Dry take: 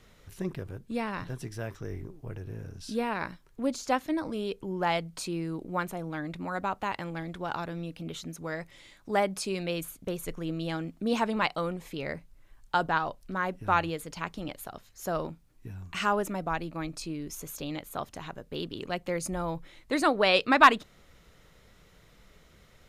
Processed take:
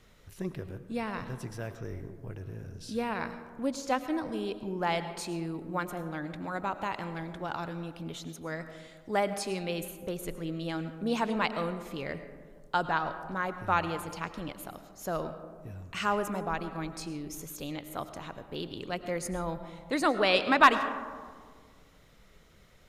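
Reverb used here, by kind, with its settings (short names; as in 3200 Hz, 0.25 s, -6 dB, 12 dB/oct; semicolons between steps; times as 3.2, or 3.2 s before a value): digital reverb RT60 1.8 s, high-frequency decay 0.3×, pre-delay 65 ms, DRR 10.5 dB; gain -2 dB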